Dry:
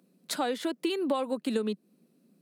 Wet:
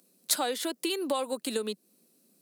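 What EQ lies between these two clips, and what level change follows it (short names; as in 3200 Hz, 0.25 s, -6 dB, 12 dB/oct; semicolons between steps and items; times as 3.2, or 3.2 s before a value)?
tone controls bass -11 dB, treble +14 dB; dynamic EQ 6800 Hz, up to -4 dB, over -40 dBFS, Q 0.93; 0.0 dB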